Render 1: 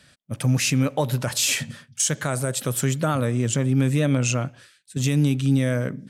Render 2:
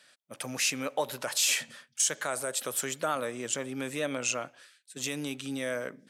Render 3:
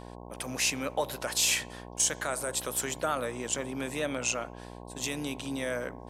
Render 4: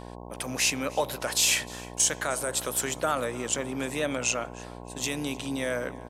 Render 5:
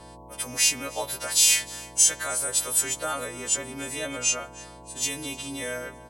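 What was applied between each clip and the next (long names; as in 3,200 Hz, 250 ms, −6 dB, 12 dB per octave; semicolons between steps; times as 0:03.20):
high-pass filter 470 Hz 12 dB per octave; level −4 dB
hum with harmonics 60 Hz, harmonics 18, −45 dBFS −2 dB per octave
repeating echo 307 ms, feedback 36%, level −22 dB; level +3 dB
every partial snapped to a pitch grid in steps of 2 semitones; level −4 dB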